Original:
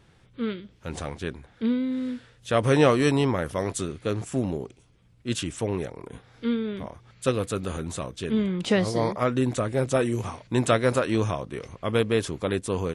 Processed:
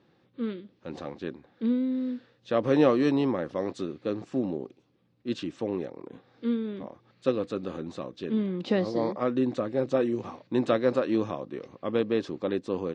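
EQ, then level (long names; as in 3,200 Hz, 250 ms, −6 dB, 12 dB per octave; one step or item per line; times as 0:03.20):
loudspeaker in its box 350–3,700 Hz, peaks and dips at 430 Hz −8 dB, 660 Hz −9 dB, 950 Hz −8 dB, 1,400 Hz −7 dB, 2,200 Hz −4 dB, 3,200 Hz −7 dB
parametric band 2,200 Hz −12 dB 1.9 octaves
+7.0 dB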